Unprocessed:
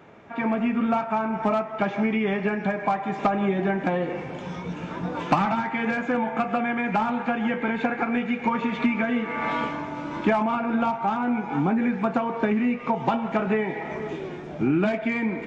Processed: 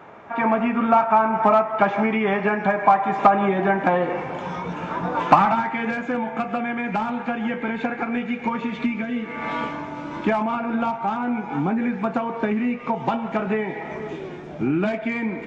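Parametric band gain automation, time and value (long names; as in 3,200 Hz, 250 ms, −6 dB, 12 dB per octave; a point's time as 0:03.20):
parametric band 1,000 Hz 1.9 octaves
0:05.28 +10 dB
0:06.00 −1 dB
0:08.50 −1 dB
0:09.09 −9.5 dB
0:09.59 +0.5 dB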